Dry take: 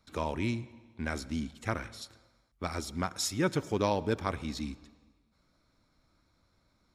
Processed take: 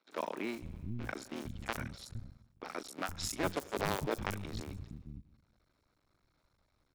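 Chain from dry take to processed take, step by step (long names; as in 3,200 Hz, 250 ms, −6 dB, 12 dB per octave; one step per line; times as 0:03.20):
sub-harmonics by changed cycles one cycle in 2, muted
three-band delay without the direct sound mids, highs, lows 40/460 ms, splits 220/5,500 Hz
level −1.5 dB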